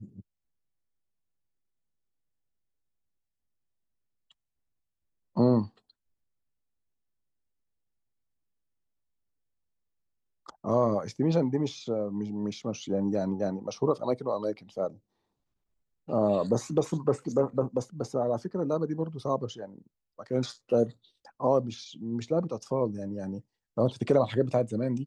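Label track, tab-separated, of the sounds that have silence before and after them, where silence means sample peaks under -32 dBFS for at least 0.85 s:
5.370000	5.650000	sound
10.490000	14.880000	sound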